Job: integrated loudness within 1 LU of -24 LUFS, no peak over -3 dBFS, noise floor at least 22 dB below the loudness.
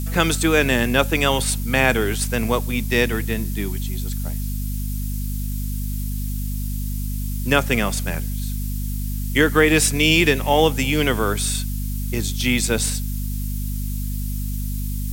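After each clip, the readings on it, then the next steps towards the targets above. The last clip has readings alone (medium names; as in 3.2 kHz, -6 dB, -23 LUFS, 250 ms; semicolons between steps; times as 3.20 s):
hum 50 Hz; highest harmonic 250 Hz; hum level -23 dBFS; noise floor -25 dBFS; noise floor target -44 dBFS; loudness -21.5 LUFS; peak level -2.0 dBFS; loudness target -24.0 LUFS
-> hum notches 50/100/150/200/250 Hz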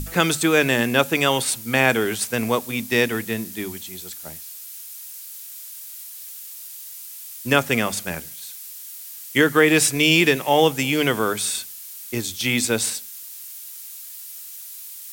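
hum not found; noise floor -38 dBFS; noise floor target -42 dBFS
-> noise reduction 6 dB, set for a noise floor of -38 dBFS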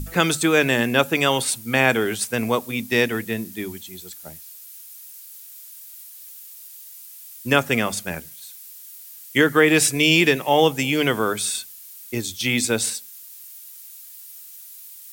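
noise floor -42 dBFS; loudness -20.0 LUFS; peak level -3.0 dBFS; loudness target -24.0 LUFS
-> trim -4 dB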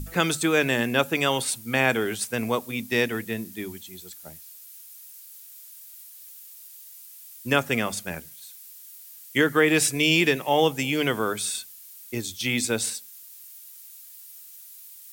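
loudness -24.0 LUFS; peak level -7.0 dBFS; noise floor -46 dBFS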